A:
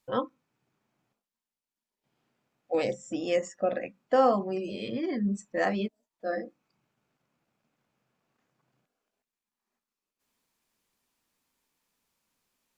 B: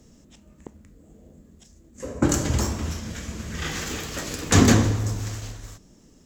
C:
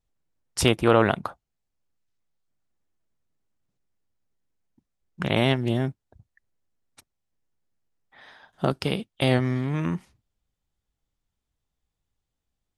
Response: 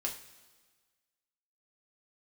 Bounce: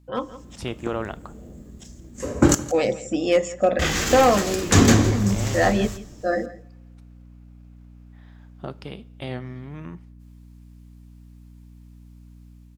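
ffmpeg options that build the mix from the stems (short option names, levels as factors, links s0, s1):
-filter_complex "[0:a]volume=8.41,asoftclip=hard,volume=0.119,aeval=exprs='val(0)+0.002*(sin(2*PI*60*n/s)+sin(2*PI*2*60*n/s)/2+sin(2*PI*3*60*n/s)/3+sin(2*PI*4*60*n/s)/4+sin(2*PI*5*60*n/s)/5)':c=same,volume=1,asplit=3[s0][s1][s2];[s1]volume=0.158[s3];[s2]volume=0.141[s4];[1:a]adelay=200,volume=0.708,asplit=3[s5][s6][s7];[s5]atrim=end=2.55,asetpts=PTS-STARTPTS,afade=t=out:st=2.546:d=0.004:c=hsin[s8];[s6]atrim=start=2.55:end=3.79,asetpts=PTS-STARTPTS,volume=0[s9];[s7]atrim=start=3.79,asetpts=PTS-STARTPTS,afade=t=in:d=0.004:c=hsin[s10];[s8][s9][s10]concat=n=3:v=0:a=1,asplit=3[s11][s12][s13];[s12]volume=0.335[s14];[s13]volume=0.158[s15];[2:a]highshelf=f=6900:g=-12,volume=0.112,asplit=2[s16][s17];[s17]volume=0.2[s18];[3:a]atrim=start_sample=2205[s19];[s3][s14][s18]amix=inputs=3:normalize=0[s20];[s20][s19]afir=irnorm=-1:irlink=0[s21];[s4][s15]amix=inputs=2:normalize=0,aecho=0:1:167:1[s22];[s0][s11][s16][s21][s22]amix=inputs=5:normalize=0,dynaudnorm=f=160:g=5:m=2.37"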